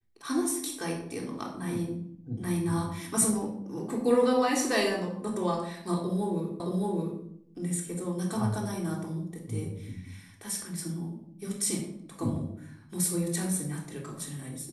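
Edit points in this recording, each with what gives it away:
6.6 repeat of the last 0.62 s

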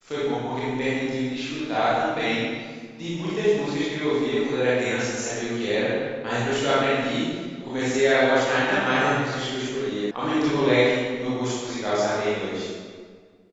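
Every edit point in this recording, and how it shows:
10.11 sound cut off

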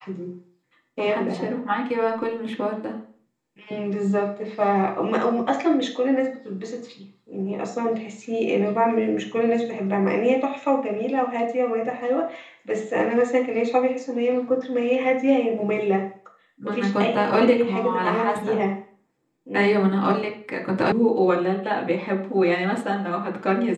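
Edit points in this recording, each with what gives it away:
20.92 sound cut off

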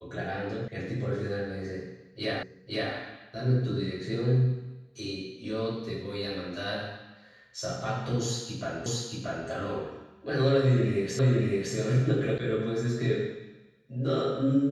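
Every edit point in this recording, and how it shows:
0.68 sound cut off
2.43 repeat of the last 0.51 s
8.86 repeat of the last 0.63 s
11.19 repeat of the last 0.56 s
12.38 sound cut off

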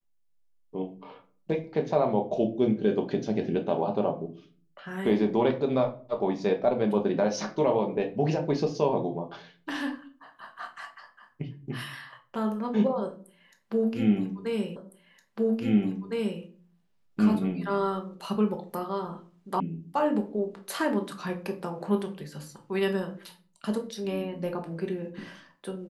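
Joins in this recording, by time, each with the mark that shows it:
14.76 repeat of the last 1.66 s
19.6 sound cut off

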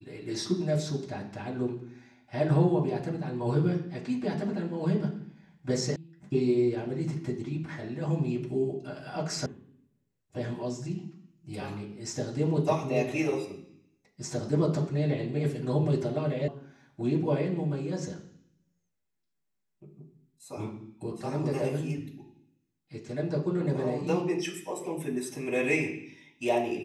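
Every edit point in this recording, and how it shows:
5.96 sound cut off
9.46 sound cut off
16.48 sound cut off

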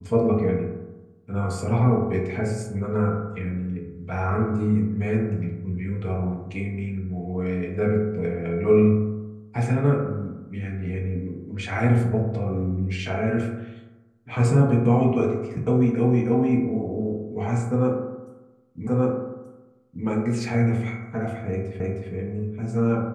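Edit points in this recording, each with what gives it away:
18.87 repeat of the last 1.18 s
21.8 repeat of the last 0.31 s

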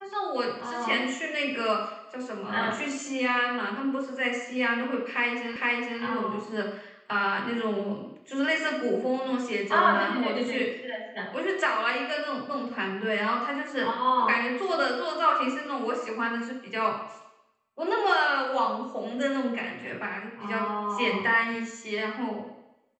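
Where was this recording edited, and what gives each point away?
5.56 repeat of the last 0.46 s

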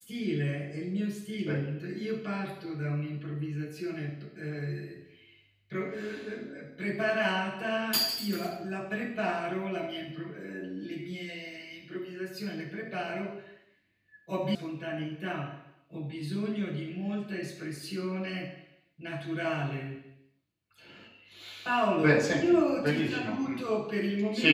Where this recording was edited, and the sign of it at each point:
14.55 sound cut off

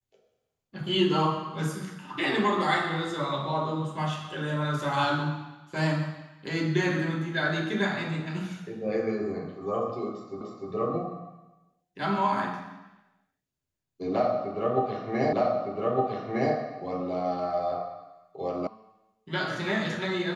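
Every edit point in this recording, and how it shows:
10.41 repeat of the last 0.3 s
15.33 repeat of the last 1.21 s
18.67 sound cut off

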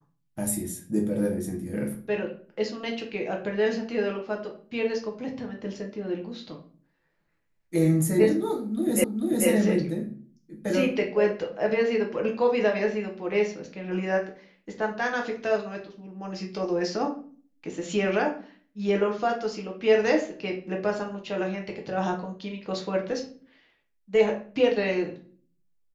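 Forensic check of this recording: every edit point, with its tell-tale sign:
9.04 repeat of the last 0.44 s

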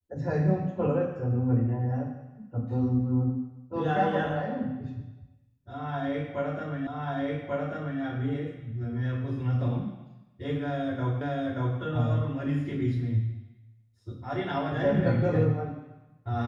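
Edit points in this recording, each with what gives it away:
6.87 repeat of the last 1.14 s
11.21 repeat of the last 0.58 s

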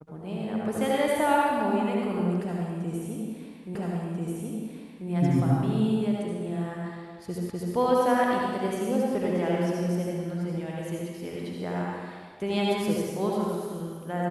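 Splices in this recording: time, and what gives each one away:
3.75 repeat of the last 1.34 s
7.5 repeat of the last 0.25 s

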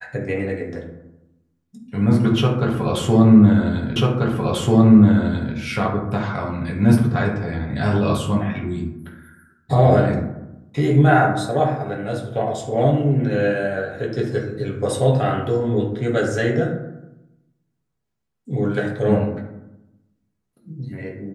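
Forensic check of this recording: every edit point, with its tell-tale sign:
3.96 repeat of the last 1.59 s

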